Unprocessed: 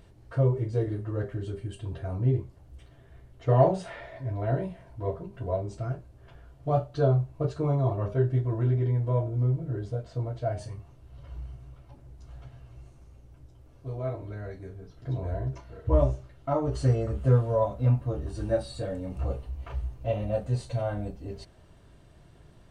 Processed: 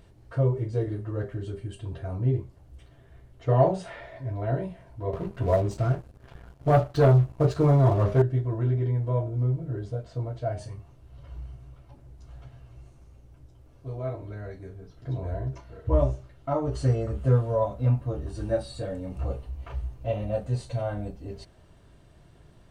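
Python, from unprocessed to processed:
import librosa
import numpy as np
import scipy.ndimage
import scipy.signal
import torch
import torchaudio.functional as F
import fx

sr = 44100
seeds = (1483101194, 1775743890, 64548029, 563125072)

y = fx.leveller(x, sr, passes=2, at=(5.13, 8.22))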